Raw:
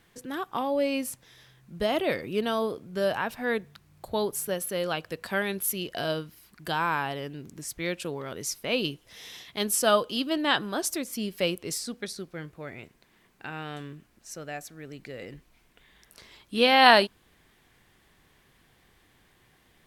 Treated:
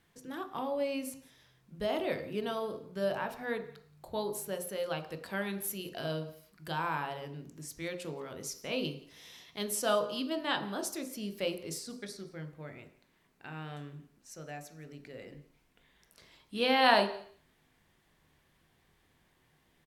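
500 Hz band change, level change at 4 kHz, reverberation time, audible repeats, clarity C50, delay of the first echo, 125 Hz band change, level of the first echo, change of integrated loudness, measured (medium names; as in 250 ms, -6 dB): -6.0 dB, -8.0 dB, 0.55 s, 1, 11.5 dB, 174 ms, -4.0 dB, -22.5 dB, -7.5 dB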